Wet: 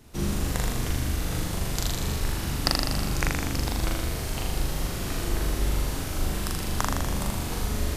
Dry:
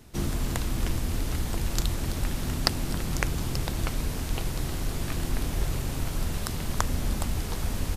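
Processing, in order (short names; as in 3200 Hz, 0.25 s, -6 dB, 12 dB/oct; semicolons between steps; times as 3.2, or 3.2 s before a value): flutter echo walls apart 6.9 m, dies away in 1.3 s; gain -1.5 dB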